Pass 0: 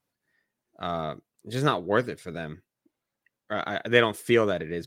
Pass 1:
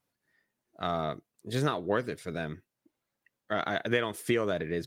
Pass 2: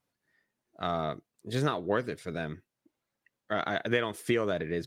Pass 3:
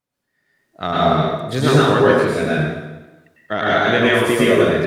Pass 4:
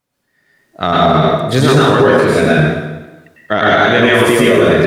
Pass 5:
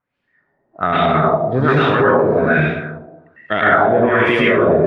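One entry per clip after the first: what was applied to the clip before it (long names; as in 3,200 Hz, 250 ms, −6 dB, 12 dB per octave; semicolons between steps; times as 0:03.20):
downward compressor 12 to 1, threshold −23 dBFS, peak gain reduction 11 dB
high-shelf EQ 11,000 Hz −6.5 dB
automatic gain control gain up to 13 dB; dense smooth reverb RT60 1.1 s, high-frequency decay 0.9×, pre-delay 90 ms, DRR −7.5 dB; level −3.5 dB
brickwall limiter −10 dBFS, peak gain reduction 8.5 dB; level +9 dB
auto-filter low-pass sine 1.2 Hz 730–2,700 Hz; level −5.5 dB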